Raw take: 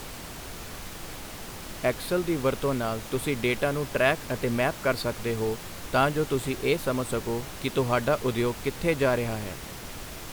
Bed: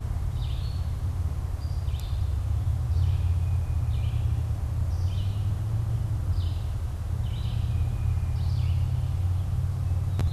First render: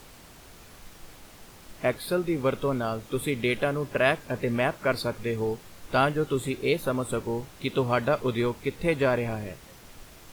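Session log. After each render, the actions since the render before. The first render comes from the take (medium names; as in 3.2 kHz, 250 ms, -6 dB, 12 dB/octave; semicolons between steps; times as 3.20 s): noise print and reduce 10 dB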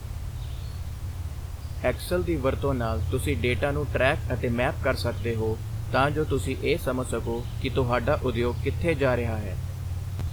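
add bed -5 dB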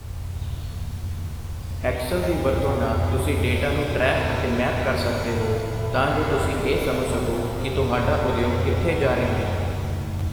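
chunks repeated in reverse 295 ms, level -11 dB; pitch-shifted reverb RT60 2.3 s, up +7 st, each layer -8 dB, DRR 0.5 dB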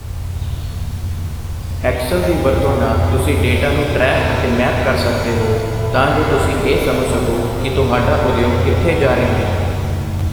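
trim +7.5 dB; peak limiter -2 dBFS, peak gain reduction 3 dB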